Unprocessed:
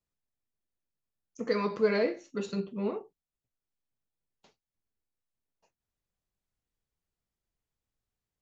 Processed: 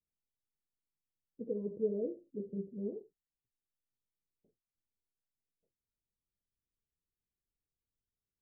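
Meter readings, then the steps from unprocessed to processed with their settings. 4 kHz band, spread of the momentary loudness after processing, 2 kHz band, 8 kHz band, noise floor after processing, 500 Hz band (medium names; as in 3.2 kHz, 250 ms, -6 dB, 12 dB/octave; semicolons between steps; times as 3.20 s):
under -35 dB, 10 LU, under -40 dB, no reading, under -85 dBFS, -8.0 dB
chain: steep low-pass 500 Hz 36 dB/octave; trim -6.5 dB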